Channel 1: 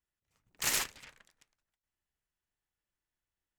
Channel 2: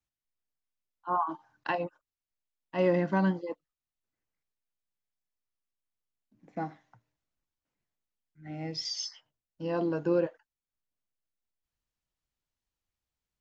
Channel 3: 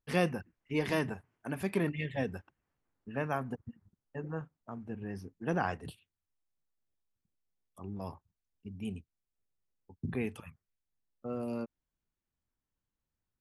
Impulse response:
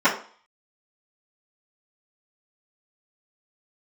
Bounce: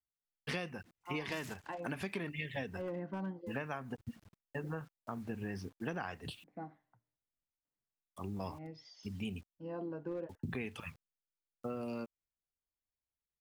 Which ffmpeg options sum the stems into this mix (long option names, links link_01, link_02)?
-filter_complex "[0:a]adelay=700,volume=-10.5dB[link_01];[1:a]lowpass=frequency=2000:poles=1,aemphasis=mode=reproduction:type=cd,asoftclip=type=hard:threshold=-19.5dB,volume=-10.5dB[link_02];[2:a]lowpass=3500,crystalizer=i=6:c=0,acrusher=bits=10:mix=0:aa=0.000001,adelay=400,volume=2.5dB[link_03];[link_01][link_02][link_03]amix=inputs=3:normalize=0,acompressor=threshold=-36dB:ratio=8"